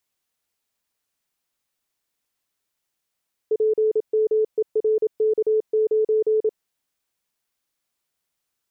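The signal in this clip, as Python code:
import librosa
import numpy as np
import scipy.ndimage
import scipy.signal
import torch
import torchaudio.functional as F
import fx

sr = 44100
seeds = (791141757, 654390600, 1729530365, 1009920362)

y = fx.morse(sr, text='PMERK9', wpm=27, hz=434.0, level_db=-16.0)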